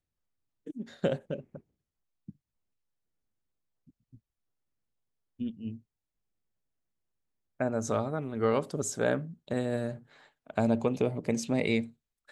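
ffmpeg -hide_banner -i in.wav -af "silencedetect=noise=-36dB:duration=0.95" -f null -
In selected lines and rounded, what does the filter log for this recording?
silence_start: 2.30
silence_end: 5.41 | silence_duration: 3.11
silence_start: 5.74
silence_end: 7.60 | silence_duration: 1.86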